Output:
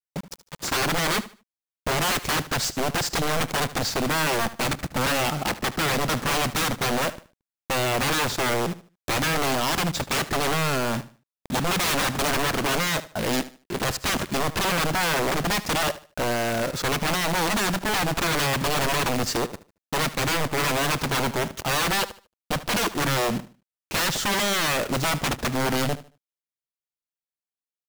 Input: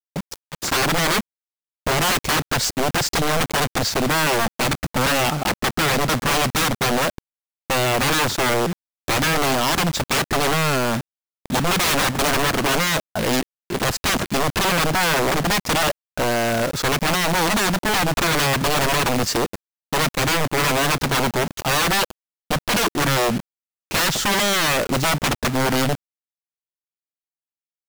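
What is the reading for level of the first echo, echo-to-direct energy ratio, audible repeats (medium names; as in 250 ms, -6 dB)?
-16.0 dB, -15.5 dB, 2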